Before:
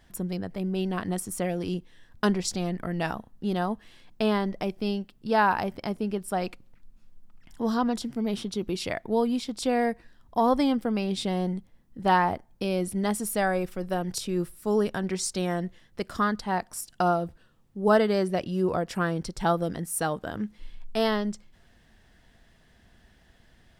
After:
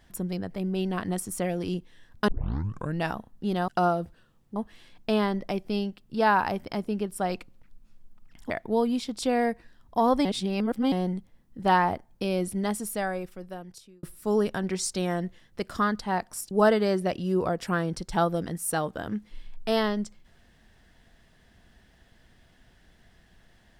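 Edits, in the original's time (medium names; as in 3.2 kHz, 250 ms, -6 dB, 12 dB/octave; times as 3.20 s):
2.28 s: tape start 0.70 s
7.62–8.90 s: delete
10.65–11.32 s: reverse
12.81–14.43 s: fade out
16.91–17.79 s: move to 3.68 s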